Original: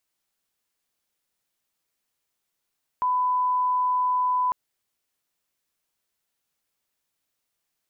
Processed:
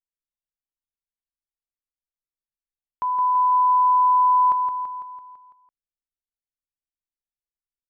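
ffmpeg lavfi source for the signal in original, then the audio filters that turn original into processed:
-f lavfi -i "sine=f=1000:d=1.5:r=44100,volume=-1.94dB"
-filter_complex "[0:a]anlmdn=1,asplit=2[s0][s1];[s1]aecho=0:1:167|334|501|668|835|1002|1169:0.501|0.286|0.163|0.0928|0.0529|0.0302|0.0172[s2];[s0][s2]amix=inputs=2:normalize=0"

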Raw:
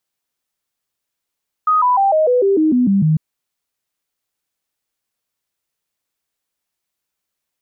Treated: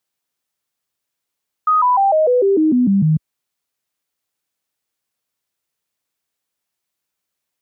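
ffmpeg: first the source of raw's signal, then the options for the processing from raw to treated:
-f lavfi -i "aevalsrc='0.299*clip(min(mod(t,0.15),0.15-mod(t,0.15))/0.005,0,1)*sin(2*PI*1250*pow(2,-floor(t/0.15)/3)*mod(t,0.15))':d=1.5:s=44100"
-af "highpass=60"

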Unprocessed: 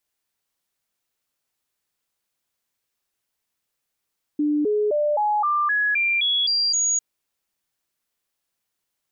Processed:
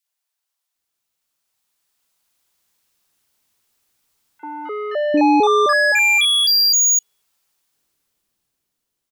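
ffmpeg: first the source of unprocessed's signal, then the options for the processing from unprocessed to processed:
-f lavfi -i "aevalsrc='0.126*clip(min(mod(t,0.26),0.26-mod(t,0.26))/0.005,0,1)*sin(2*PI*297*pow(2,floor(t/0.26)/2)*mod(t,0.26))':d=2.6:s=44100"
-filter_complex "[0:a]dynaudnorm=f=390:g=9:m=3.98,asoftclip=type=tanh:threshold=0.237,acrossover=split=560|1900[s0][s1][s2];[s1]adelay=40[s3];[s0]adelay=750[s4];[s4][s3][s2]amix=inputs=3:normalize=0"

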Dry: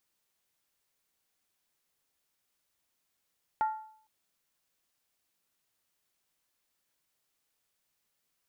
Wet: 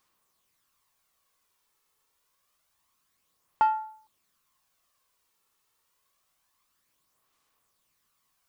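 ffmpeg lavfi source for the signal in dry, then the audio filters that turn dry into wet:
-f lavfi -i "aevalsrc='0.0708*pow(10,-3*t/0.58)*sin(2*PI*870*t)+0.0178*pow(10,-3*t/0.459)*sin(2*PI*1386.8*t)+0.00447*pow(10,-3*t/0.397)*sin(2*PI*1858.3*t)+0.00112*pow(10,-3*t/0.383)*sin(2*PI*1997.5*t)+0.000282*pow(10,-3*t/0.356)*sin(2*PI*2308.1*t)':d=0.46:s=44100"
-filter_complex "[0:a]equalizer=f=1100:t=o:w=0.3:g=12,asplit=2[s0][s1];[s1]asoftclip=type=tanh:threshold=0.0299,volume=0.562[s2];[s0][s2]amix=inputs=2:normalize=0,aphaser=in_gain=1:out_gain=1:delay=2.3:decay=0.38:speed=0.27:type=sinusoidal"

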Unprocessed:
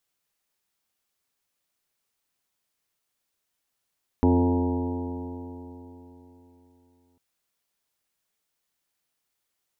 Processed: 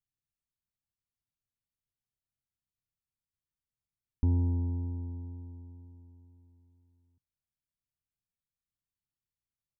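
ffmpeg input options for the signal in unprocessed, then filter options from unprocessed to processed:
-f lavfi -i "aevalsrc='0.0891*pow(10,-3*t/3.65)*sin(2*PI*86.39*t)+0.02*pow(10,-3*t/3.65)*sin(2*PI*173.29*t)+0.126*pow(10,-3*t/3.65)*sin(2*PI*261.22*t)+0.0531*pow(10,-3*t/3.65)*sin(2*PI*350.68*t)+0.0501*pow(10,-3*t/3.65)*sin(2*PI*442.16*t)+0.0158*pow(10,-3*t/3.65)*sin(2*PI*536.12*t)+0.015*pow(10,-3*t/3.65)*sin(2*PI*633.01*t)+0.0126*pow(10,-3*t/3.65)*sin(2*PI*733.26*t)+0.0282*pow(10,-3*t/3.65)*sin(2*PI*837.25*t)+0.0251*pow(10,-3*t/3.65)*sin(2*PI*945.37*t)':d=2.95:s=44100"
-af "firequalizer=gain_entry='entry(130,0);entry(190,-9);entry(560,-29);entry(910,-22)':delay=0.05:min_phase=1"

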